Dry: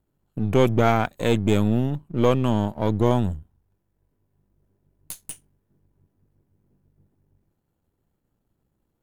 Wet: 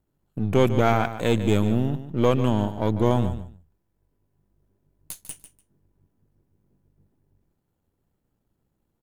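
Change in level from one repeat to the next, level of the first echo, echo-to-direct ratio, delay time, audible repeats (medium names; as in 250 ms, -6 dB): -15.5 dB, -12.0 dB, -12.0 dB, 147 ms, 2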